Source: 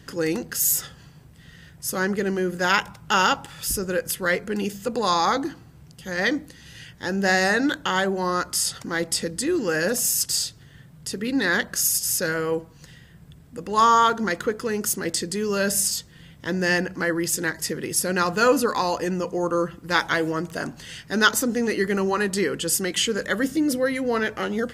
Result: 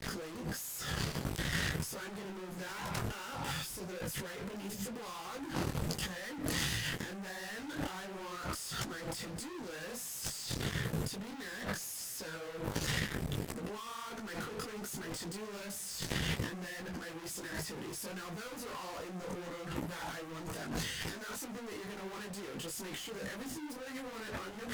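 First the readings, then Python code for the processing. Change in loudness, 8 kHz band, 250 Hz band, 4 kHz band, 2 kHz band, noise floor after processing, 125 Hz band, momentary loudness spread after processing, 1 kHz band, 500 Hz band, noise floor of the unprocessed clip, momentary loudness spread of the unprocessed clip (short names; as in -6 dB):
-16.5 dB, -16.5 dB, -15.5 dB, -12.5 dB, -16.5 dB, -46 dBFS, -6.5 dB, 8 LU, -20.0 dB, -18.5 dB, -49 dBFS, 10 LU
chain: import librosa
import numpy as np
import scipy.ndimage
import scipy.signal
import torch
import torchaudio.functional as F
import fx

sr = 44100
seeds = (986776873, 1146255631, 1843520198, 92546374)

y = fx.fuzz(x, sr, gain_db=42.0, gate_db=-47.0)
y = fx.gate_flip(y, sr, shuts_db=-17.0, range_db=-26)
y = fx.over_compress(y, sr, threshold_db=-51.0, ratio=-1.0)
y = fx.detune_double(y, sr, cents=51)
y = y * librosa.db_to_amplitude(13.5)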